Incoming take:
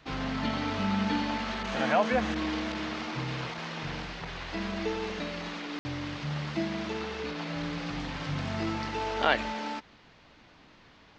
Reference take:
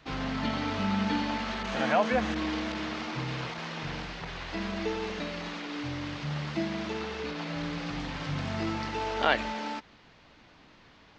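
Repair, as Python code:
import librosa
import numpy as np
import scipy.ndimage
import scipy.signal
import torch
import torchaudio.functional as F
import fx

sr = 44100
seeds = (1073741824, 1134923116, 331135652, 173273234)

y = fx.fix_ambience(x, sr, seeds[0], print_start_s=9.81, print_end_s=10.31, start_s=5.79, end_s=5.85)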